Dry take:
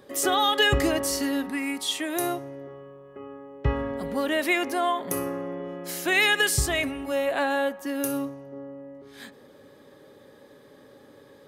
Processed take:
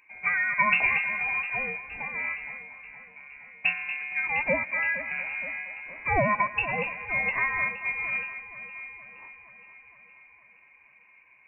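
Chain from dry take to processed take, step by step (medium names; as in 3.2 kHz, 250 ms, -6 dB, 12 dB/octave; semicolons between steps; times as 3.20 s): bass shelf 62 Hz -5.5 dB; band-stop 1.3 kHz, Q 7; on a send: echo whose repeats swap between lows and highs 234 ms, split 1.7 kHz, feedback 79%, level -8.5 dB; on the sum: frequency inversion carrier 2.7 kHz; upward expansion 1.5:1, over -35 dBFS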